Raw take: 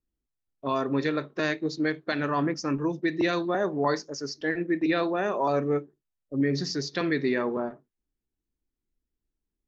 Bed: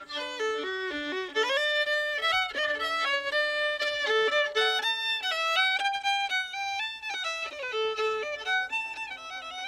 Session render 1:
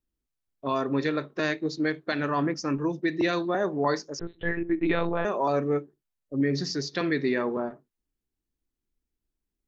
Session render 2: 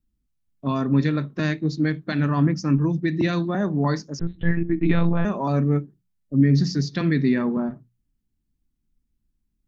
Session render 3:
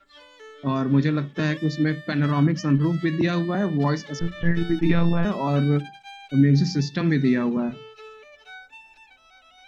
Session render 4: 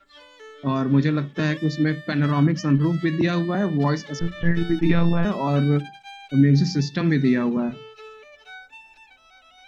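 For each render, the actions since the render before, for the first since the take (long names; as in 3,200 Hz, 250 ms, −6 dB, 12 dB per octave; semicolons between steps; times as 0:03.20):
0:04.19–0:05.25: one-pitch LPC vocoder at 8 kHz 170 Hz
low shelf with overshoot 290 Hz +12 dB, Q 1.5; mains-hum notches 60/120/180 Hz
mix in bed −15 dB
level +1 dB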